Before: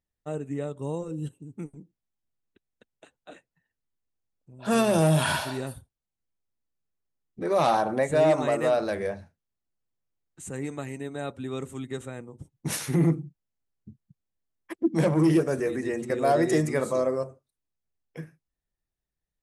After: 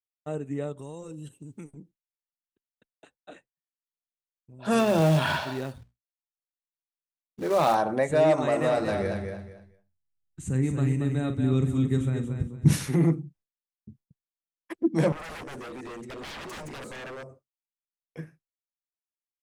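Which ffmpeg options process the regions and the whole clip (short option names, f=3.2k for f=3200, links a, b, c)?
-filter_complex "[0:a]asettb=1/sr,asplit=3[a][b][c];[a]atrim=end=0.784[d];[b]atrim=start=0.78:end=1.71,asetpts=PTS-STARTPTS,afade=t=in:d=0.004:c=qsin,afade=t=out:st=0.926:d=0.004:c=qsin,highshelf=f=2.1k:g=11,acompressor=threshold=-37dB:ratio=5:attack=3.2:release=140:knee=1:detection=peak[e];[c]atrim=start=1.706[f];[d][e]acrossfade=d=0.004:c1=hsin:c2=qsin[g];[g][f]acrossfade=d=0.004:c1=qsin:c2=hsin,asettb=1/sr,asplit=3[h][i][j];[h]atrim=end=4.794[k];[i]atrim=start=4.79:end=7.75,asetpts=PTS-STARTPTS,afade=t=in:d=0.004:c=qsin,afade=t=out:st=2.956:d=0.004:c=qsin,lowpass=4.6k,bandreject=f=60:t=h:w=6,bandreject=f=120:t=h:w=6,bandreject=f=180:t=h:w=6,bandreject=f=240:t=h:w=6,bandreject=f=300:t=h:w=6,acrusher=bits=4:mode=log:mix=0:aa=0.000001[l];[j]atrim=start=7.746[m];[k][l]acrossfade=d=0.004:c1=hsin:c2=qsin[n];[n][m]acrossfade=d=0.004:c1=qsin:c2=hsin,asettb=1/sr,asplit=3[o][p][q];[o]atrim=end=8.334[r];[p]atrim=start=8.33:end=12.87,asetpts=PTS-STARTPTS,afade=t=in:d=0.004:c=qsin,afade=t=out:st=4.536:d=0.004:c=qsin,asubboost=boost=8.5:cutoff=230,asplit=2[s][t];[t]adelay=46,volume=-11dB[u];[s][u]amix=inputs=2:normalize=0,atrim=end_sample=200214,aecho=1:1:229|458|687:0.501|0.12|0.0289,atrim=end_sample=200214[v];[q]atrim=start=12.866[w];[r][v]acrossfade=d=0.004:c1=hsin:c2=qsin[x];[x][w]acrossfade=d=0.004:c1=qsin:c2=hsin,asettb=1/sr,asplit=3[y][z][aa];[y]atrim=end=15.124[ab];[z]atrim=start=15.12:end=18.19,asetpts=PTS-STARTPTS,afade=t=in:d=0.004:c=qsin,afade=t=out:st=3.066:d=0.004:c=qsin,aeval=exprs='0.0398*(abs(mod(val(0)/0.0398+3,4)-2)-1)':c=same,acompressor=threshold=-42dB:ratio=2:attack=3.2:release=140:knee=1:detection=peak[ac];[aa]atrim=start=18.186[ad];[ab][ac]acrossfade=d=0.004:c1=hsin:c2=qsin[ae];[ae][ad]acrossfade=d=0.004:c1=qsin:c2=hsin,agate=range=-33dB:threshold=-51dB:ratio=3:detection=peak,highshelf=f=9.8k:g=-6.5"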